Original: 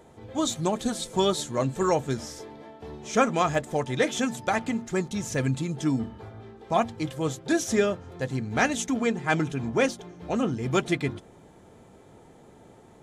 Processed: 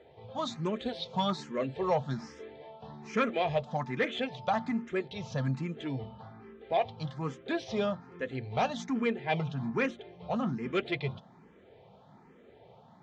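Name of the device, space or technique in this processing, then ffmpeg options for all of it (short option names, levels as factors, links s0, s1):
barber-pole phaser into a guitar amplifier: -filter_complex "[0:a]asplit=2[s0][s1];[s1]afreqshift=1.2[s2];[s0][s2]amix=inputs=2:normalize=1,asoftclip=type=tanh:threshold=0.126,highpass=82,equalizer=f=91:t=q:w=4:g=-8,equalizer=f=310:t=q:w=4:g=-9,equalizer=f=1500:t=q:w=4:g=-3,lowpass=f=4200:w=0.5412,lowpass=f=4200:w=1.3066"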